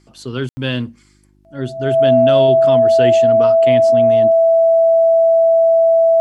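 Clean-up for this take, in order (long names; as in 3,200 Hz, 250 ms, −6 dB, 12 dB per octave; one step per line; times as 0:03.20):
hum removal 50.4 Hz, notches 7
notch filter 660 Hz, Q 30
ambience match 0:00.49–0:00.57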